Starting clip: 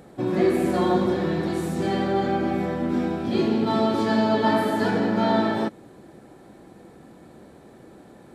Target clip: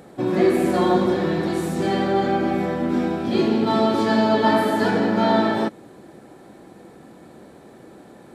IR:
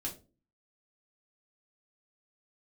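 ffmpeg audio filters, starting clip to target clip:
-af "lowshelf=f=100:g=-8,volume=1.5"

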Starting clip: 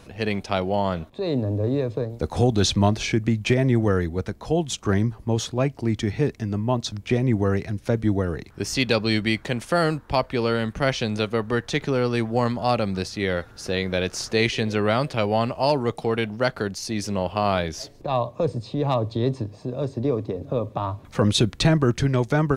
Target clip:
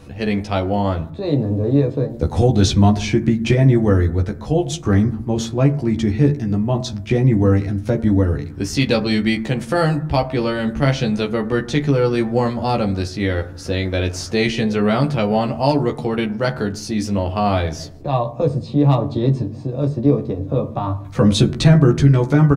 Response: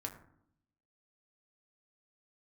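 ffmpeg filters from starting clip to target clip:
-filter_complex "[0:a]lowshelf=f=370:g=7,asplit=2[s0][s1];[s1]adelay=14,volume=0.708[s2];[s0][s2]amix=inputs=2:normalize=0,asplit=2[s3][s4];[1:a]atrim=start_sample=2205[s5];[s4][s5]afir=irnorm=-1:irlink=0,volume=0.944[s6];[s3][s6]amix=inputs=2:normalize=0,volume=0.562"

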